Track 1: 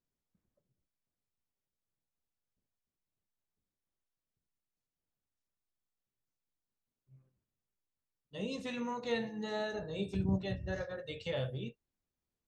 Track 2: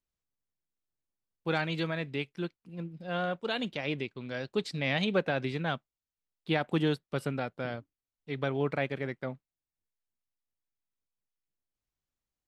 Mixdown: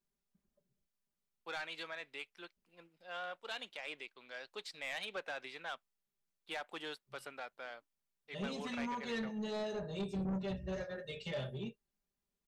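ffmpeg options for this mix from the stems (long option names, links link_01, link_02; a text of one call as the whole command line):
ffmpeg -i stem1.wav -i stem2.wav -filter_complex "[0:a]aecho=1:1:5:0.89,volume=-2.5dB[link_01];[1:a]agate=range=-33dB:threshold=-54dB:ratio=3:detection=peak,highpass=760,volume=-6dB[link_02];[link_01][link_02]amix=inputs=2:normalize=0,asoftclip=type=tanh:threshold=-33.5dB" out.wav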